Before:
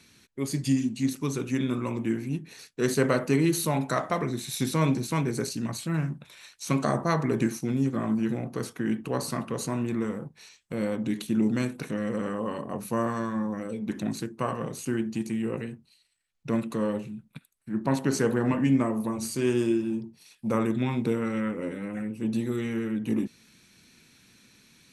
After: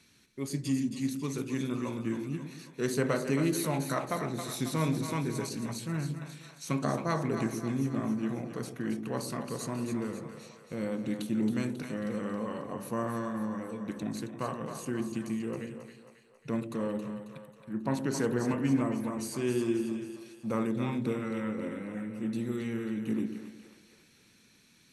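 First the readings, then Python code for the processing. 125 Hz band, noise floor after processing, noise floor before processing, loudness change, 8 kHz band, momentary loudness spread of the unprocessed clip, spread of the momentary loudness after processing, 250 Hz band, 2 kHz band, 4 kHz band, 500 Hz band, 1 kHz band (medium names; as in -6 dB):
-5.0 dB, -62 dBFS, -64 dBFS, -4.5 dB, -4.5 dB, 10 LU, 10 LU, -4.5 dB, -4.5 dB, -4.5 dB, -4.5 dB, -4.5 dB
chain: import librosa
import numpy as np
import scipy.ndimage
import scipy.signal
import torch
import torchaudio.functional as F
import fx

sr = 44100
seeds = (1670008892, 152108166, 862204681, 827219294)

y = fx.echo_split(x, sr, split_hz=500.0, low_ms=119, high_ms=271, feedback_pct=52, wet_db=-8)
y = F.gain(torch.from_numpy(y), -5.5).numpy()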